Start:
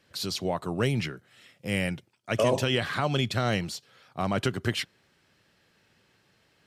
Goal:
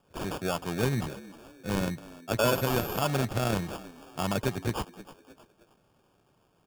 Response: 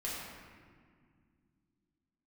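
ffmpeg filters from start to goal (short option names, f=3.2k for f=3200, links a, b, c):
-filter_complex "[0:a]asplit=4[a][b][c][d];[b]adelay=311,afreqshift=77,volume=-18dB[e];[c]adelay=622,afreqshift=154,volume=-25.5dB[f];[d]adelay=933,afreqshift=231,volume=-33.1dB[g];[a][e][f][g]amix=inputs=4:normalize=0,acrusher=samples=22:mix=1:aa=0.000001,asettb=1/sr,asplit=3[h][i][j];[h]atrim=end=2.444[k];[i]atrim=start=2.44:end=3.01,asetpts=PTS-STARTPTS,afade=t=in:d=0.004:c=qsin,afade=t=out:st=0.566:d=0.004:c=qsin,aeval=exprs='val(0)+0.0112*sin(2*PI*12000*n/s)':c=same[l];[j]atrim=start=3.006[m];[k][l]acrossfade=d=0.004:c1=hsin:c2=qsin[n];[n][m]acrossfade=d=0.004:c1=qsin:c2=hsin,volume=-1.5dB"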